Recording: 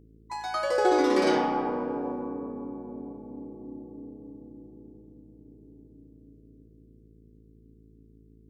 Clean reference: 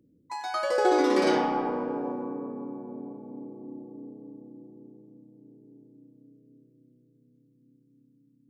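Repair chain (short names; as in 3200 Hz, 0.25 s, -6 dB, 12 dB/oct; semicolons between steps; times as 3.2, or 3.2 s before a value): de-hum 54.7 Hz, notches 8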